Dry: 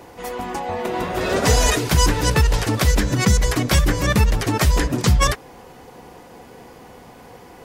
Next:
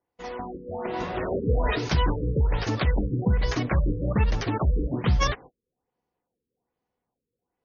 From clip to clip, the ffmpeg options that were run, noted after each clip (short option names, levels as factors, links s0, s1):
-af "agate=range=0.0178:threshold=0.0178:ratio=16:detection=peak,afftfilt=real='re*lt(b*sr/1024,480*pow(7000/480,0.5+0.5*sin(2*PI*1.2*pts/sr)))':imag='im*lt(b*sr/1024,480*pow(7000/480,0.5+0.5*sin(2*PI*1.2*pts/sr)))':win_size=1024:overlap=0.75,volume=0.501"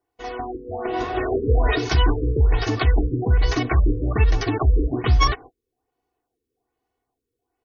-af "aecho=1:1:2.7:0.83,volume=1.26"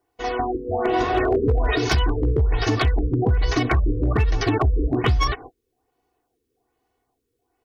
-af "acompressor=threshold=0.0891:ratio=20,volume=7.94,asoftclip=hard,volume=0.126,volume=2"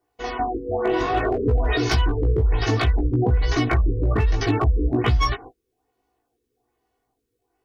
-af "flanger=delay=16.5:depth=2:speed=0.61,volume=1.26"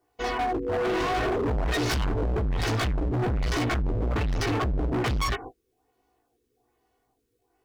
-af "asoftclip=type=hard:threshold=0.0501,volume=1.26"